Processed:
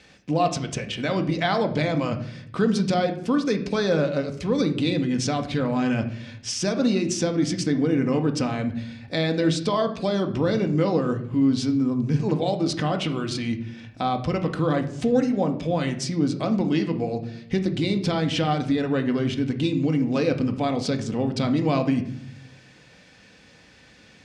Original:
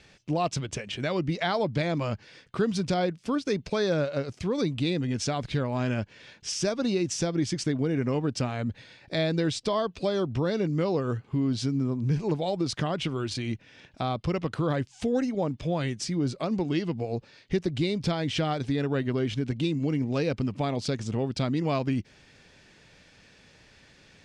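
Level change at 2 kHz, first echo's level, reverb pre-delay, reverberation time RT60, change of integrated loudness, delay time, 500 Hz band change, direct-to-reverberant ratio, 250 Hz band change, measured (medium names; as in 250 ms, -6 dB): +4.0 dB, no echo, 4 ms, 0.70 s, +4.5 dB, no echo, +4.0 dB, 5.0 dB, +6.0 dB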